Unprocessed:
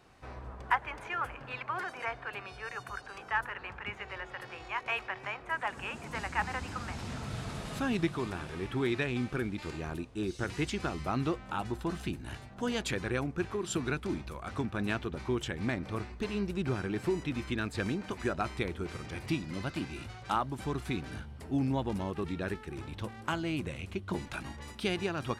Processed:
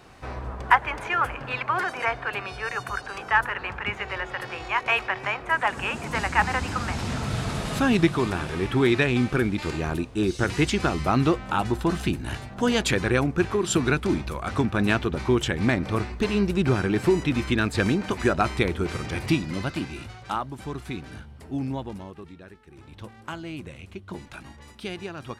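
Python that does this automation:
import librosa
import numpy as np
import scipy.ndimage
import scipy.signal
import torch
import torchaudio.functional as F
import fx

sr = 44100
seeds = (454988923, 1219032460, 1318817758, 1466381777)

y = fx.gain(x, sr, db=fx.line((19.23, 10.5), (20.5, 1.0), (21.73, 1.0), (22.53, -12.0), (23.01, -2.0)))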